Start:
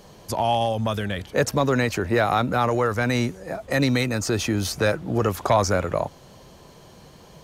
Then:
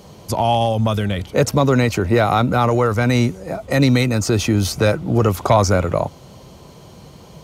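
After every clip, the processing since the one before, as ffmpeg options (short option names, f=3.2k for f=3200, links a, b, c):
-af "highpass=58,lowshelf=f=200:g=6.5,bandreject=f=1.7k:w=7.4,volume=4dB"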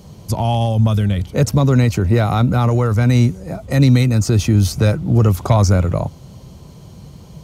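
-af "bass=f=250:g=11,treble=f=4k:g=4,volume=-4.5dB"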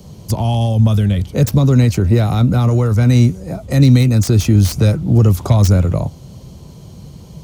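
-filter_complex "[0:a]acrossover=split=340|3000[a][b][c];[b]acompressor=threshold=-24dB:ratio=2[d];[a][d][c]amix=inputs=3:normalize=0,acrossover=split=670|2700[e][f][g];[f]flanger=delay=8.8:depth=9.8:regen=52:speed=1.7:shape=sinusoidal[h];[g]aeval=exprs='(mod(8.91*val(0)+1,2)-1)/8.91':c=same[i];[e][h][i]amix=inputs=3:normalize=0,volume=2.5dB"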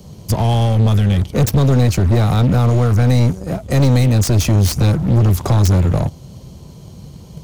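-filter_complex "[0:a]asplit=2[a][b];[b]acrusher=bits=3:mix=0:aa=0.5,volume=-5dB[c];[a][c]amix=inputs=2:normalize=0,aeval=exprs='(tanh(2.82*val(0)+0.25)-tanh(0.25))/2.82':c=same"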